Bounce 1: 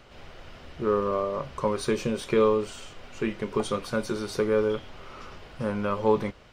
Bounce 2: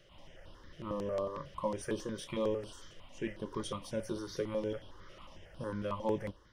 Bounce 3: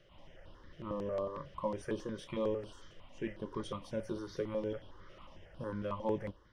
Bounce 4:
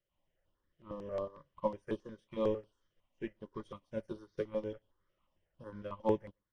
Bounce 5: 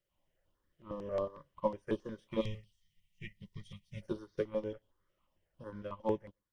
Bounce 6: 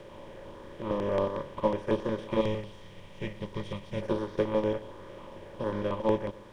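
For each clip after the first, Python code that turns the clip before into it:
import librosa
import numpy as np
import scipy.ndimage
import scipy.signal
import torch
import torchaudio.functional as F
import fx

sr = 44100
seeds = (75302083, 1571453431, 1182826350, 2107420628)

y1 = fx.ripple_eq(x, sr, per_octave=1.2, db=7)
y1 = fx.phaser_held(y1, sr, hz=11.0, low_hz=250.0, high_hz=6900.0)
y1 = y1 * librosa.db_to_amplitude(-7.5)
y2 = fx.lowpass(y1, sr, hz=2900.0, slope=6)
y2 = y2 * librosa.db_to_amplitude(-1.0)
y3 = y2 + 10.0 ** (-21.5 / 20.0) * np.pad(y2, (int(120 * sr / 1000.0), 0))[:len(y2)]
y3 = fx.upward_expand(y3, sr, threshold_db=-51.0, expansion=2.5)
y3 = y3 * librosa.db_to_amplitude(5.5)
y4 = fx.spec_box(y3, sr, start_s=2.41, length_s=1.61, low_hz=210.0, high_hz=1800.0, gain_db=-24)
y4 = fx.rider(y4, sr, range_db=10, speed_s=0.5)
y4 = y4 * librosa.db_to_amplitude(2.0)
y5 = fx.bin_compress(y4, sr, power=0.4)
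y5 = y5 * librosa.db_to_amplitude(3.0)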